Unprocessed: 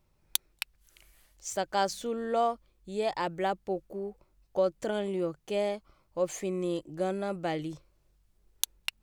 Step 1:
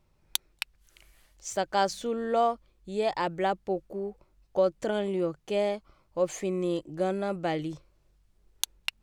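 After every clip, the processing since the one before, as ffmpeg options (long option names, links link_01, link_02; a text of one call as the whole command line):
ffmpeg -i in.wav -af "highshelf=frequency=9900:gain=-8.5,volume=2.5dB" out.wav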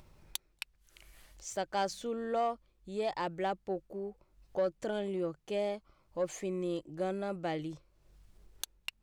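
ffmpeg -i in.wav -af "asoftclip=type=tanh:threshold=-16.5dB,acompressor=mode=upward:threshold=-41dB:ratio=2.5,volume=-5.5dB" out.wav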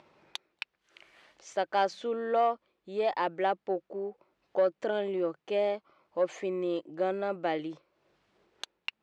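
ffmpeg -i in.wav -af "highpass=310,lowpass=3300,volume=6dB" out.wav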